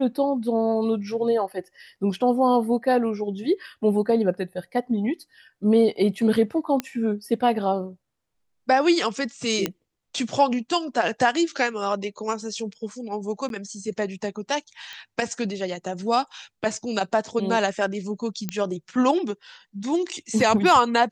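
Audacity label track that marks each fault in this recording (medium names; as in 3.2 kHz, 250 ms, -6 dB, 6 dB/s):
6.800000	6.800000	pop -12 dBFS
9.660000	9.660000	pop -8 dBFS
13.490000	13.500000	dropout 12 ms
14.930000	14.930000	pop -23 dBFS
18.490000	18.490000	pop -12 dBFS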